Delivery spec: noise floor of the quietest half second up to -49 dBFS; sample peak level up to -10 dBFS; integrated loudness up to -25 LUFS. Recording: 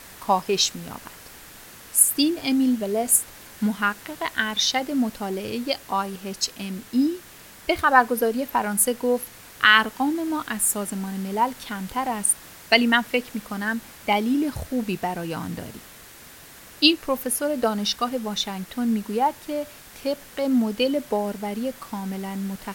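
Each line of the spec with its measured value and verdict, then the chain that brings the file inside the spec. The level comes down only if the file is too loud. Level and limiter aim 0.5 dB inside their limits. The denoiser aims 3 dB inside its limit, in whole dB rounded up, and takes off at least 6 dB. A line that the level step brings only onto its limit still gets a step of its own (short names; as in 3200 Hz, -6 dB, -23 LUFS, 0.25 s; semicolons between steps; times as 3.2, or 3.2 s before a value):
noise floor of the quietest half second -46 dBFS: fail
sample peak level -1.5 dBFS: fail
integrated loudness -23.5 LUFS: fail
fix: denoiser 6 dB, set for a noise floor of -46 dBFS; gain -2 dB; limiter -10.5 dBFS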